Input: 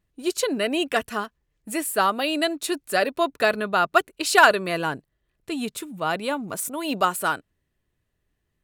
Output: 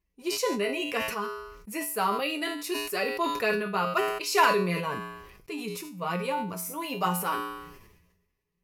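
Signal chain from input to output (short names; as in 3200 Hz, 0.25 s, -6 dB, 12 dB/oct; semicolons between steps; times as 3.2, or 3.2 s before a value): ripple EQ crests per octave 0.82, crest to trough 9 dB; flange 0.68 Hz, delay 2.7 ms, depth 8.6 ms, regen +4%; resonator 59 Hz, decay 0.45 s, harmonics odd, mix 80%; sustainer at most 50 dB/s; gain +6 dB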